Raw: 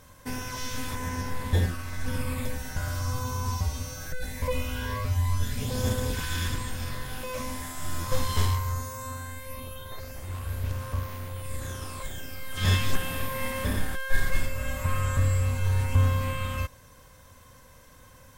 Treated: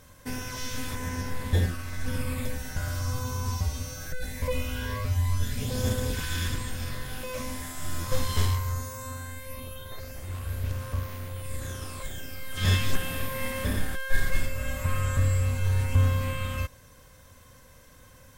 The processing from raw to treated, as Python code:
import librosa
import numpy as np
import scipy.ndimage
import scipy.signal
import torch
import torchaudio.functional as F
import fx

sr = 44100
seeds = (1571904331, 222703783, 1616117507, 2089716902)

y = fx.peak_eq(x, sr, hz=950.0, db=-4.0, octaves=0.58)